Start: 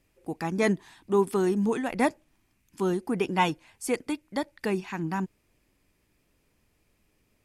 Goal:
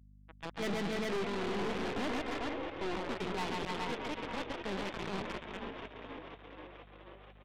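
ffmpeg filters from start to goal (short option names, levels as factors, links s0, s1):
-filter_complex "[0:a]asettb=1/sr,asplit=3[s0][s1][s2];[s0]atrim=end=4.054[s3];[s1]atrim=start=4.05:end=4.9,asetpts=PTS-STARTPTS,afade=t=in:d=0.004:c=qsin,afade=t=out:st=0.846:d=0.004:c=qsin,aeval=exprs='val(0)+0.5*0.0211*sgn(val(0))':c=same[s4];[s2]atrim=start=4.896[s5];[s3][s4]acrossfade=d=0.004:c1=hsin:c2=qsin[s6];[s6][s5]acrossfade=d=0.004:c1=qsin:c2=hsin,asplit=2[s7][s8];[s8]aecho=0:1:136|287|310|372|413:0.668|0.398|0.376|0.1|0.631[s9];[s7][s9]amix=inputs=2:normalize=0,asettb=1/sr,asplit=3[s10][s11][s12];[s10]atrim=end=0.624[s13];[s11]atrim=start=0.62:end=1.25,asetpts=PTS-STARTPTS,afade=t=in:d=0.004:c=qsin,afade=t=out:st=0.626:d=0.004:c=qsin,acontrast=54[s14];[s12]atrim=start=1.246[s15];[s13][s14]acrossfade=d=0.004:c1=hsin:c2=qsin[s16];[s16][s15]acrossfade=d=0.004:c1=qsin:c2=hsin,acrusher=bits=3:mix=0:aa=0.000001,asettb=1/sr,asplit=3[s17][s18][s19];[s17]atrim=end=1.964[s20];[s18]atrim=start=1.96:end=2.96,asetpts=PTS-STARTPTS,afade=t=in:d=0.004:c=qsin,afade=t=out:st=0.996:d=0.004:c=qsin,aecho=1:1:2.9:0.36,atrim=end_sample=44100[s21];[s19]atrim=start=2.956[s22];[s20][s21]acrossfade=d=0.004:c1=hsin:c2=qsin[s23];[s23][s22]acrossfade=d=0.004:c1=qsin:c2=hsin,afftdn=nr=16:nf=-37,asplit=2[s24][s25];[s25]asplit=8[s26][s27][s28][s29][s30][s31][s32][s33];[s26]adelay=483,afreqshift=40,volume=0.251[s34];[s27]adelay=966,afreqshift=80,volume=0.16[s35];[s28]adelay=1449,afreqshift=120,volume=0.102[s36];[s29]adelay=1932,afreqshift=160,volume=0.0661[s37];[s30]adelay=2415,afreqshift=200,volume=0.0422[s38];[s31]adelay=2898,afreqshift=240,volume=0.0269[s39];[s32]adelay=3381,afreqshift=280,volume=0.0172[s40];[s33]adelay=3864,afreqshift=320,volume=0.0111[s41];[s34][s35][s36][s37][s38][s39][s40][s41]amix=inputs=8:normalize=0[s42];[s24][s42]amix=inputs=2:normalize=0,aresample=8000,aresample=44100,aeval=exprs='(tanh(25.1*val(0)+0.55)-tanh(0.55))/25.1':c=same,aeval=exprs='val(0)+0.00251*(sin(2*PI*50*n/s)+sin(2*PI*2*50*n/s)/2+sin(2*PI*3*50*n/s)/3+sin(2*PI*4*50*n/s)/4+sin(2*PI*5*50*n/s)/5)':c=same,volume=0.562"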